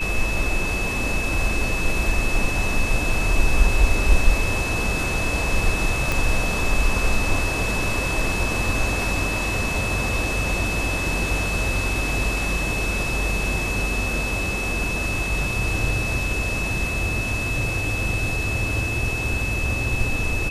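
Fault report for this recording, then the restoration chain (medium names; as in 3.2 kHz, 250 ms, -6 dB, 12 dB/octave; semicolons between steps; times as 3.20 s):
whine 2.6 kHz -26 dBFS
6.12 s: pop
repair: de-click; band-stop 2.6 kHz, Q 30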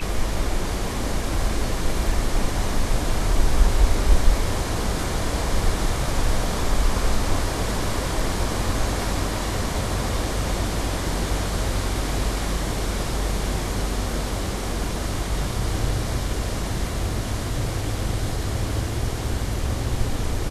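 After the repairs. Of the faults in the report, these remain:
6.12 s: pop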